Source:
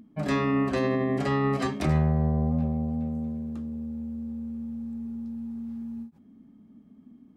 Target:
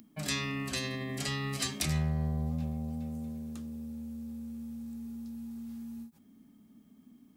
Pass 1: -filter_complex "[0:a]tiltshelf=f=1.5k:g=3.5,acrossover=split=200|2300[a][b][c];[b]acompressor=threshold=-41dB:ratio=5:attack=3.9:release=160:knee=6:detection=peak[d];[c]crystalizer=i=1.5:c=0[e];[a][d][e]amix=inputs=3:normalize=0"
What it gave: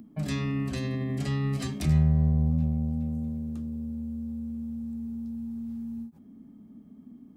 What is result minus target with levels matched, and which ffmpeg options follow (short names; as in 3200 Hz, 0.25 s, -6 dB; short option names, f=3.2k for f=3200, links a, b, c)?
2000 Hz band -10.5 dB
-filter_complex "[0:a]tiltshelf=f=1.5k:g=-6,acrossover=split=200|2300[a][b][c];[b]acompressor=threshold=-41dB:ratio=5:attack=3.9:release=160:knee=6:detection=peak[d];[c]crystalizer=i=1.5:c=0[e];[a][d][e]amix=inputs=3:normalize=0"